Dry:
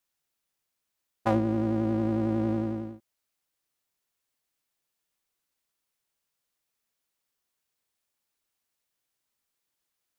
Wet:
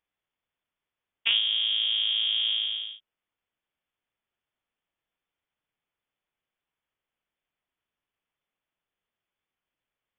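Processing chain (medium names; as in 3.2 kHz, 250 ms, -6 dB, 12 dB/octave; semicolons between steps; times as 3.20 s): frequency inversion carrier 3.5 kHz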